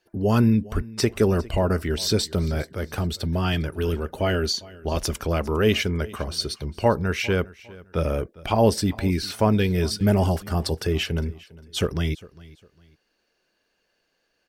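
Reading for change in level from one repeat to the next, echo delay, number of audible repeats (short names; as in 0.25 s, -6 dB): -10.5 dB, 0.404 s, 2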